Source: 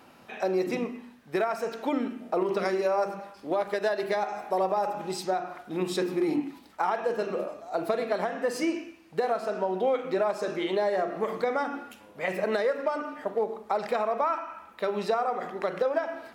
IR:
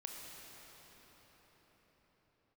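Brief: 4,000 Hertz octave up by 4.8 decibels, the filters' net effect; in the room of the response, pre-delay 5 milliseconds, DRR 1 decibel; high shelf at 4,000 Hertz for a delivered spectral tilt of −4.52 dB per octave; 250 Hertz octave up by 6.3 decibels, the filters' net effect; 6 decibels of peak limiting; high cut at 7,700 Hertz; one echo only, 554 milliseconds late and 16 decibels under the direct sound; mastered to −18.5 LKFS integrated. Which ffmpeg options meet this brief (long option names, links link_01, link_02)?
-filter_complex "[0:a]lowpass=7700,equalizer=frequency=250:width_type=o:gain=9,highshelf=frequency=4000:gain=-3.5,equalizer=frequency=4000:width_type=o:gain=8,alimiter=limit=-16.5dB:level=0:latency=1,aecho=1:1:554:0.158,asplit=2[link_01][link_02];[1:a]atrim=start_sample=2205,adelay=5[link_03];[link_02][link_03]afir=irnorm=-1:irlink=0,volume=1dB[link_04];[link_01][link_04]amix=inputs=2:normalize=0,volume=6dB"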